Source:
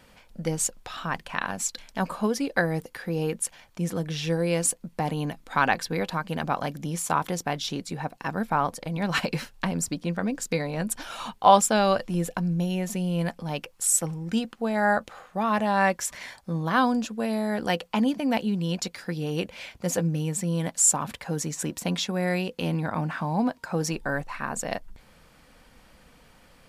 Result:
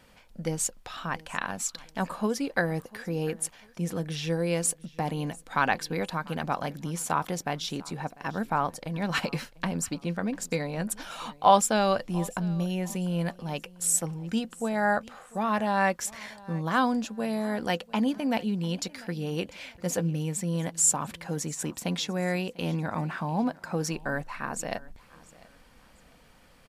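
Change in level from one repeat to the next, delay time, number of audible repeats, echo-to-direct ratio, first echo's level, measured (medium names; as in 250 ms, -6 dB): -10.0 dB, 696 ms, 2, -21.5 dB, -22.0 dB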